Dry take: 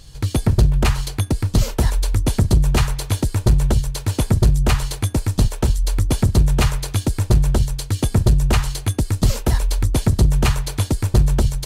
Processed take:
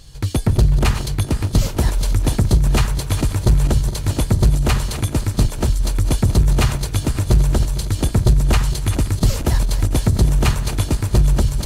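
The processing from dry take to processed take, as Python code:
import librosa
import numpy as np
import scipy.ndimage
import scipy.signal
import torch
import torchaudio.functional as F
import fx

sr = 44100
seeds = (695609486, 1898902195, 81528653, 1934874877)

y = fx.reverse_delay_fb(x, sr, ms=230, feedback_pct=71, wet_db=-11.5)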